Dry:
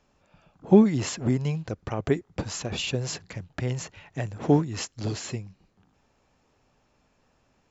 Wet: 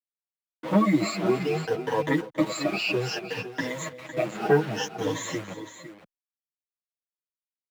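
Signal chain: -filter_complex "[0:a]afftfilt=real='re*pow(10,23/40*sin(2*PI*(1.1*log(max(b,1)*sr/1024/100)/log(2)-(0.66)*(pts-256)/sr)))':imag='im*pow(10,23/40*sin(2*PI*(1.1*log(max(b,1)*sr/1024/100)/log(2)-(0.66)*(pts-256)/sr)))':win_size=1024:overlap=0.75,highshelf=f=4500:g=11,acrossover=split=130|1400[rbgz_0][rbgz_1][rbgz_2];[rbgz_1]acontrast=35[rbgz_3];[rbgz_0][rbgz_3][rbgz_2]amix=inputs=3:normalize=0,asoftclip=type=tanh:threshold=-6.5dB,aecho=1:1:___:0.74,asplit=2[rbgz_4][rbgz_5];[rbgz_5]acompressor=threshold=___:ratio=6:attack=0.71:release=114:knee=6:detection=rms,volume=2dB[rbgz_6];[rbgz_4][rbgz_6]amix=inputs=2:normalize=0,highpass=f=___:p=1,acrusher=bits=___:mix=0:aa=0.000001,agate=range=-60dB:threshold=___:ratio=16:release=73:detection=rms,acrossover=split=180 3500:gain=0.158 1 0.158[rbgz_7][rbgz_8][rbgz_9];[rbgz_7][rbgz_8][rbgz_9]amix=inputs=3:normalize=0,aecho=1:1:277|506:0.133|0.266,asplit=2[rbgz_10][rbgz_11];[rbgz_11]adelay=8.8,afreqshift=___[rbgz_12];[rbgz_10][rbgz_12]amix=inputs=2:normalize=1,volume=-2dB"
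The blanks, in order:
6.3, -33dB, 69, 4, -29dB, -0.54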